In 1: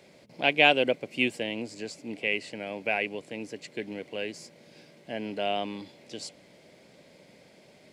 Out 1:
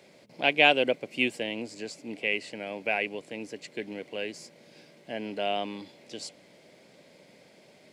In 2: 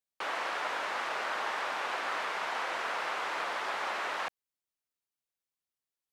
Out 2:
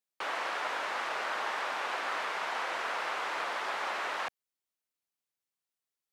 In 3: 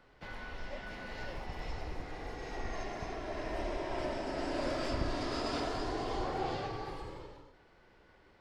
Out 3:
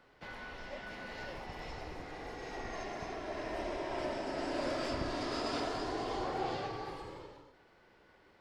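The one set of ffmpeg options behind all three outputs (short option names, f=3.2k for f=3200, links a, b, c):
-af "lowshelf=f=85:g=-10.5"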